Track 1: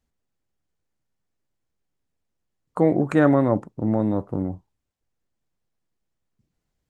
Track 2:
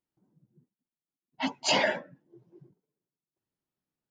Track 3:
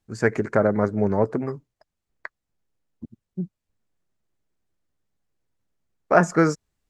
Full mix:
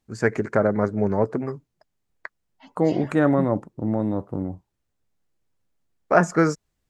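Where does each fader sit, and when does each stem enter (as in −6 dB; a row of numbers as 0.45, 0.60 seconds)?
−2.0, −19.5, −0.5 decibels; 0.00, 1.20, 0.00 seconds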